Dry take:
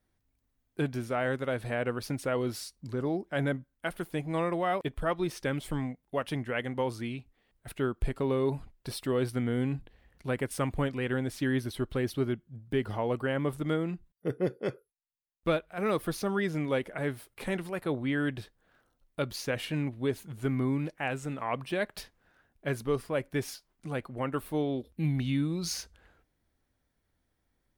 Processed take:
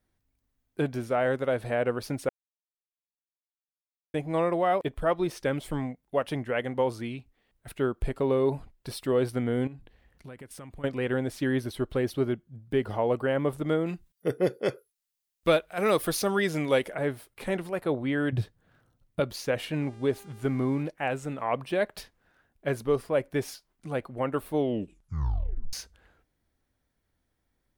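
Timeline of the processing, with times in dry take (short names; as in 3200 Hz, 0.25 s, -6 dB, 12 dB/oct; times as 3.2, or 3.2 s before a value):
2.29–4.14 mute
9.67–10.84 compressor 5:1, threshold -42 dBFS
13.86–16.95 high shelf 2200 Hz +11 dB
18.32–19.2 bell 120 Hz +14.5 dB 1.5 oct
19.8–20.82 buzz 400 Hz, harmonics 26, -56 dBFS -6 dB/oct
24.57 tape stop 1.16 s
whole clip: dynamic EQ 580 Hz, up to +6 dB, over -42 dBFS, Q 0.92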